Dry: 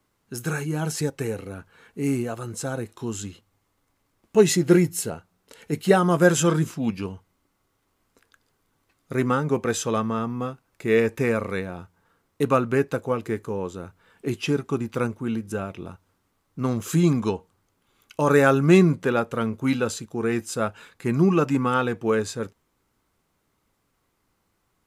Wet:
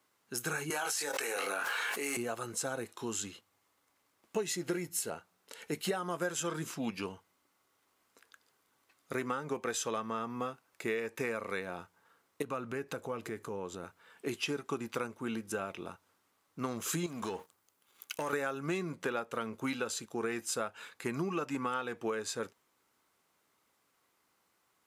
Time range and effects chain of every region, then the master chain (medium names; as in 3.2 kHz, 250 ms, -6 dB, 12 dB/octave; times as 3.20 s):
0.70–2.17 s: high-pass 660 Hz + doubling 21 ms -4.5 dB + level flattener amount 100%
12.42–13.84 s: bass shelf 200 Hz +8.5 dB + compression 2.5:1, threshold -32 dBFS
17.06–18.33 s: treble shelf 9.3 kHz +10 dB + compression 10:1, threshold -32 dBFS + waveshaping leveller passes 2
whole clip: high-pass 620 Hz 6 dB/octave; compression 10:1, threshold -31 dBFS